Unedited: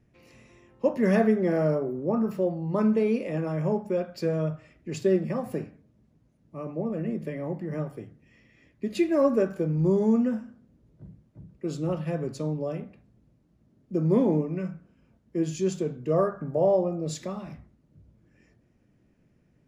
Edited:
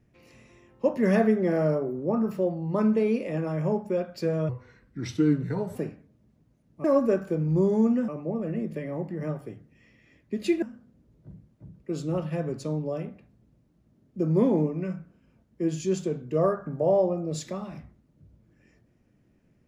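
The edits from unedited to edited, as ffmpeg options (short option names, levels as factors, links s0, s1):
-filter_complex "[0:a]asplit=6[s0][s1][s2][s3][s4][s5];[s0]atrim=end=4.494[s6];[s1]atrim=start=4.49:end=5.5,asetpts=PTS-STARTPTS,asetrate=35280,aresample=44100,atrim=end_sample=55676,asetpts=PTS-STARTPTS[s7];[s2]atrim=start=5.496:end=6.592[s8];[s3]atrim=start=9.128:end=10.372[s9];[s4]atrim=start=6.588:end=9.132[s10];[s5]atrim=start=10.368[s11];[s6][s7]acrossfade=d=0.004:c1=hsin:c2=hsin[s12];[s12][s8]acrossfade=d=0.004:c1=hsin:c2=hsin[s13];[s13][s9]acrossfade=d=0.004:c1=hsin:c2=hsin[s14];[s14][s10]acrossfade=d=0.004:c1=hsin:c2=hsin[s15];[s15][s11]acrossfade=d=0.004:c1=hsin:c2=hsin"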